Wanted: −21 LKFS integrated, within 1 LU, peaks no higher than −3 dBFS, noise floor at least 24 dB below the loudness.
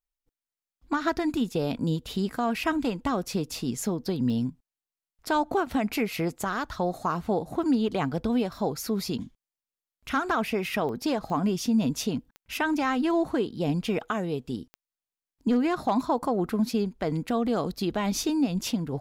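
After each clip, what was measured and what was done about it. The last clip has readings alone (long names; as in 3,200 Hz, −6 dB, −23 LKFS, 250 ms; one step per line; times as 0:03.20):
number of clicks 5; integrated loudness −28.0 LKFS; sample peak −16.0 dBFS; target loudness −21.0 LKFS
→ click removal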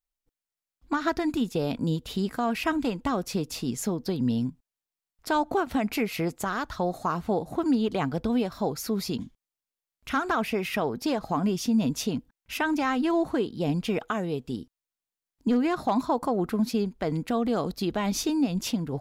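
number of clicks 0; integrated loudness −28.0 LKFS; sample peak −16.0 dBFS; target loudness −21.0 LKFS
→ level +7 dB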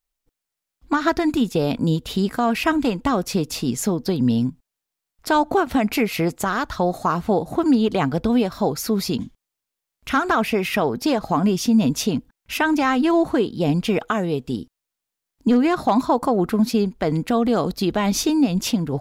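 integrated loudness −21.0 LKFS; sample peak −9.0 dBFS; background noise floor −84 dBFS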